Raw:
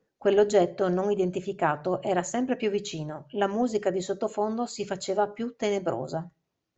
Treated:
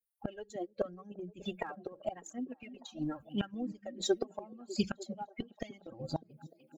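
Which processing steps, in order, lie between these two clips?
per-bin expansion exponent 2; comb 3.7 ms, depth 64%; flipped gate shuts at -29 dBFS, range -28 dB; phaser 0.84 Hz, delay 2.9 ms, feedback 62%; delay with a stepping band-pass 0.3 s, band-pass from 190 Hz, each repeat 0.7 oct, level -11 dB; gain +9.5 dB

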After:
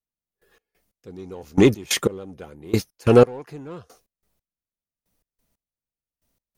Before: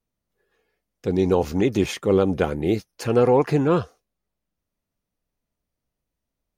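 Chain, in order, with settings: high shelf 5800 Hz +8.5 dB; in parallel at -5 dB: overloaded stage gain 21 dB; on the sum: step gate ".....xx..xx..." 181 bpm -24 dB; gain +4 dB

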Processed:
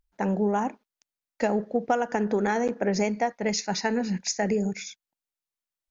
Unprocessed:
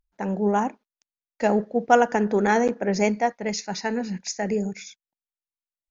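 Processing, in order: compressor 10:1, threshold -23 dBFS, peak gain reduction 13 dB; gain +2.5 dB

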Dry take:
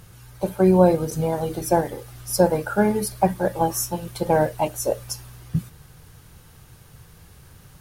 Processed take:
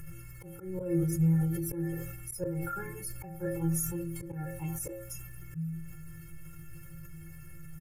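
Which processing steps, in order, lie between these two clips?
metallic resonator 160 Hz, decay 0.48 s, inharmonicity 0.03; auto swell 0.202 s; tone controls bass +9 dB, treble +2 dB; comb 2.3 ms, depth 87%; in parallel at +2.5 dB: upward compressor, threshold -32 dBFS; on the sum: fixed phaser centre 1700 Hz, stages 4; de-hum 133.2 Hz, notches 17; sustainer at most 35 dB/s; gain -6.5 dB

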